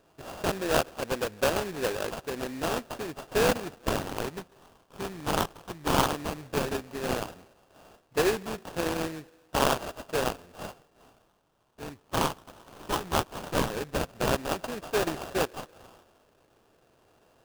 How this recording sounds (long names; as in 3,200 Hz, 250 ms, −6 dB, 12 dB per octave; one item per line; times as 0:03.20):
a buzz of ramps at a fixed pitch in blocks of 16 samples
phaser sweep stages 4, 0.14 Hz, lowest notch 540–1,800 Hz
aliases and images of a low sample rate 2,100 Hz, jitter 20%